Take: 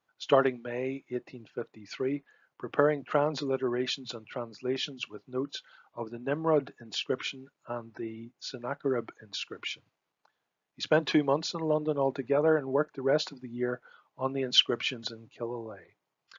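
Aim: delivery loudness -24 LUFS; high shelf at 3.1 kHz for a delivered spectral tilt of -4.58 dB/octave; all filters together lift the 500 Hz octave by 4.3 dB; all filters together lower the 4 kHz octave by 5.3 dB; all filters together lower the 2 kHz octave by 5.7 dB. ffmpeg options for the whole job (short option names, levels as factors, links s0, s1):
-af "equalizer=f=500:t=o:g=5.5,equalizer=f=2000:t=o:g=-8.5,highshelf=f=3100:g=4,equalizer=f=4000:t=o:g=-6.5,volume=1.58"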